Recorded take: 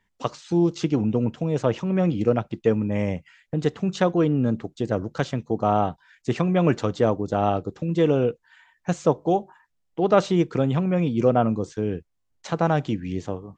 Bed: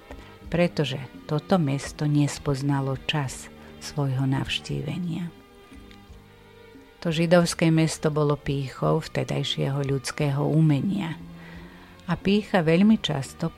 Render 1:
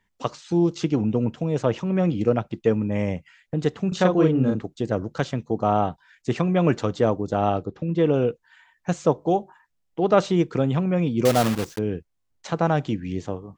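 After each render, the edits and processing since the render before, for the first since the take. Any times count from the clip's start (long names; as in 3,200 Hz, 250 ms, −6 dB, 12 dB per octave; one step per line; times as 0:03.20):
0:03.88–0:04.62: double-tracking delay 38 ms −2.5 dB
0:07.65–0:08.14: high-frequency loss of the air 150 metres
0:11.25–0:11.79: one scale factor per block 3 bits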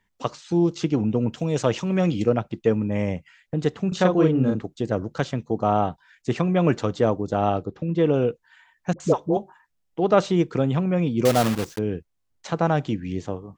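0:01.33–0:02.25: high-shelf EQ 2,900 Hz +12 dB
0:08.93–0:09.37: all-pass dispersion highs, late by 70 ms, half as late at 620 Hz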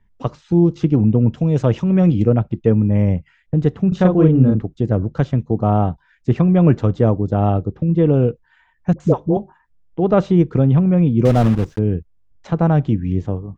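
RIAA equalisation playback
notch filter 4,400 Hz, Q 23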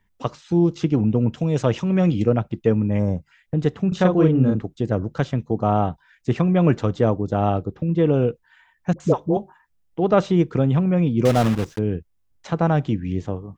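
spectral tilt +2 dB per octave
0:02.99–0:03.32: gain on a spectral selection 1,700–3,500 Hz −16 dB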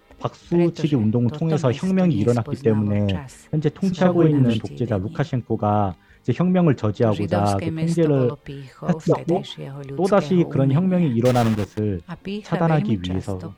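mix in bed −7.5 dB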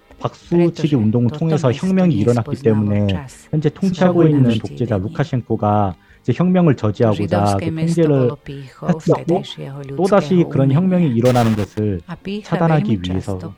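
level +4 dB
brickwall limiter −1 dBFS, peak gain reduction 1.5 dB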